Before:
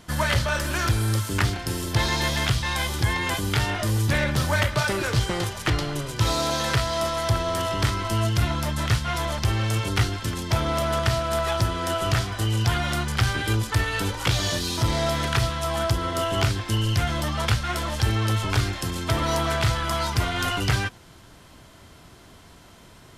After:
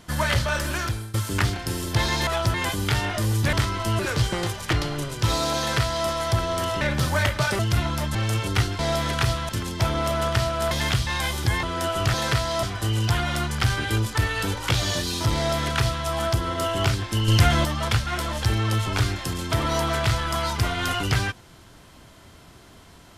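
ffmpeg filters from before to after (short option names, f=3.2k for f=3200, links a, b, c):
-filter_complex "[0:a]asplit=17[a][b][c][d][e][f][g][h][i][j][k][l][m][n][o][p][q];[a]atrim=end=1.14,asetpts=PTS-STARTPTS,afade=t=out:st=0.69:d=0.45:silence=0.0841395[r];[b]atrim=start=1.14:end=2.272,asetpts=PTS-STARTPTS,afade=t=in:d=0.004:c=hsin:silence=0.0841395[s];[c]atrim=start=11.418:end=11.692[t];[d]atrim=start=3.188:end=4.182[u];[e]atrim=start=7.778:end=8.242[v];[f]atrim=start=4.958:end=7.782[w];[g]atrim=start=4.178:end=4.962[x];[h]atrim=start=8.238:end=8.802[y];[i]atrim=start=9.558:end=10.202[z];[j]atrim=start=14.928:end=15.632[aa];[k]atrim=start=10.198:end=11.422[ab];[l]atrim=start=2.268:end=3.192[ac];[m]atrim=start=11.688:end=12.202[ad];[n]atrim=start=6.558:end=7.052[ae];[o]atrim=start=12.198:end=16.852[af];[p]atrim=start=16.848:end=17.222,asetpts=PTS-STARTPTS,volume=6dB[ag];[q]atrim=start=17.218[ah];[r][s]concat=n=2:v=0:a=1[ai];[ai][t]acrossfade=d=0.004:c1=hsin:c2=hsin[aj];[aj][u]acrossfade=d=0.004:c1=hsin:c2=hsin[ak];[ak][v]acrossfade=d=0.004:c1=hsin:c2=hsin[al];[al][w]acrossfade=d=0.004:c1=hsin:c2=hsin[am];[am][x]acrossfade=d=0.004:c1=hsin:c2=hsin[an];[an][y]acrossfade=d=0.004:c1=hsin:c2=hsin[ao];[ao][z]acrossfade=d=0.004:c1=hsin:c2=hsin[ap];[ap][aa]acrossfade=d=0.004:c1=hsin:c2=hsin[aq];[aq][ab]acrossfade=d=0.004:c1=hsin:c2=hsin[ar];[ar][ac]acrossfade=d=0.004:c1=hsin:c2=hsin[as];[as][ad]acrossfade=d=0.004:c1=hsin:c2=hsin[at];[at][ae]acrossfade=d=0.004:c1=hsin:c2=hsin[au];[au][af]acrossfade=d=0.004:c1=hsin:c2=hsin[av];[av][ag]acrossfade=d=0.004:c1=hsin:c2=hsin[aw];[aw][ah]acrossfade=d=0.004:c1=hsin:c2=hsin"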